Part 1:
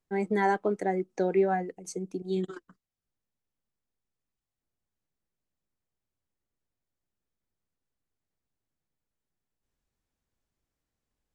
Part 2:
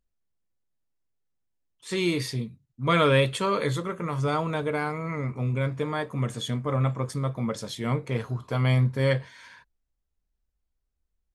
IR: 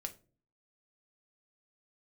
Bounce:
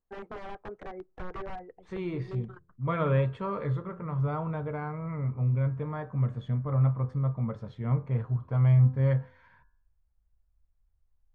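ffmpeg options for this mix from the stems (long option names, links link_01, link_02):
-filter_complex "[0:a]equalizer=frequency=200:width=0.8:gain=-15,acompressor=threshold=-32dB:ratio=16,aeval=exprs='(mod(35.5*val(0)+1,2)-1)/35.5':channel_layout=same,volume=-0.5dB,asplit=2[link_01][link_02];[link_02]volume=-21dB[link_03];[1:a]lowshelf=frequency=120:gain=-8.5,bandreject=frequency=85.44:width_type=h:width=4,bandreject=frequency=170.88:width_type=h:width=4,bandreject=frequency=256.32:width_type=h:width=4,bandreject=frequency=341.76:width_type=h:width=4,bandreject=frequency=427.2:width_type=h:width=4,bandreject=frequency=512.64:width_type=h:width=4,bandreject=frequency=598.08:width_type=h:width=4,bandreject=frequency=683.52:width_type=h:width=4,bandreject=frequency=768.96:width_type=h:width=4,bandreject=frequency=854.4:width_type=h:width=4,bandreject=frequency=939.84:width_type=h:width=4,bandreject=frequency=1025.28:width_type=h:width=4,bandreject=frequency=1110.72:width_type=h:width=4,bandreject=frequency=1196.16:width_type=h:width=4,bandreject=frequency=1281.6:width_type=h:width=4,bandreject=frequency=1367.04:width_type=h:width=4,bandreject=frequency=1452.48:width_type=h:width=4,bandreject=frequency=1537.92:width_type=h:width=4,bandreject=frequency=1623.36:width_type=h:width=4,bandreject=frequency=1708.8:width_type=h:width=4,volume=-4dB[link_04];[2:a]atrim=start_sample=2205[link_05];[link_03][link_05]afir=irnorm=-1:irlink=0[link_06];[link_01][link_04][link_06]amix=inputs=3:normalize=0,lowpass=1200,asubboost=boost=8.5:cutoff=110"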